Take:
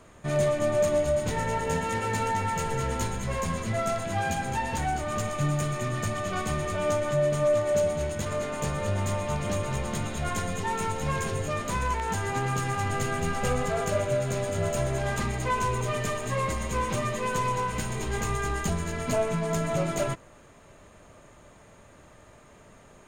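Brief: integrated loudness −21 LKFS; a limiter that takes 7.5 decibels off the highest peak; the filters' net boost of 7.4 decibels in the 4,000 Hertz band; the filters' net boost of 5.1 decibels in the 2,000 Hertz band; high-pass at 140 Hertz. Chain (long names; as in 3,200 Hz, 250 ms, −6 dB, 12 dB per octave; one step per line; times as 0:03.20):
high-pass filter 140 Hz
parametric band 2,000 Hz +4.5 dB
parametric band 4,000 Hz +8 dB
level +8 dB
brickwall limiter −12.5 dBFS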